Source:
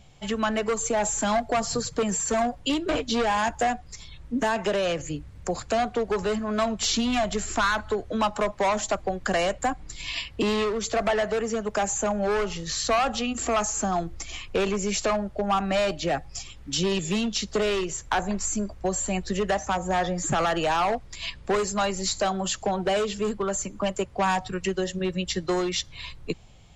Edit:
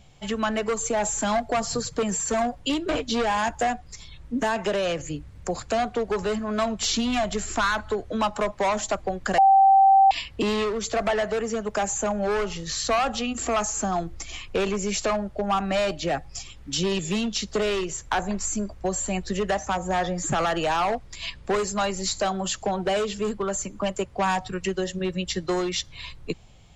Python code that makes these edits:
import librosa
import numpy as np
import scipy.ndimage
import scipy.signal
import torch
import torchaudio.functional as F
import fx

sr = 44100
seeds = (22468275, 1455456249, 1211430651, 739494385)

y = fx.edit(x, sr, fx.bleep(start_s=9.38, length_s=0.73, hz=778.0, db=-12.0), tone=tone)